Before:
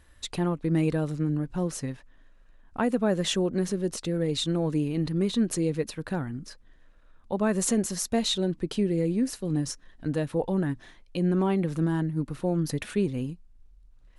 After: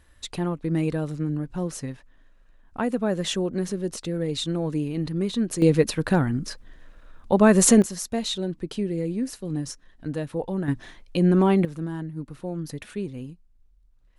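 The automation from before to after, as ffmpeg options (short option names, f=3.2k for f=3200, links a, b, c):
-af "asetnsamples=n=441:p=0,asendcmd='5.62 volume volume 9.5dB;7.82 volume volume -1.5dB;10.68 volume volume 6dB;11.65 volume volume -5dB',volume=0dB"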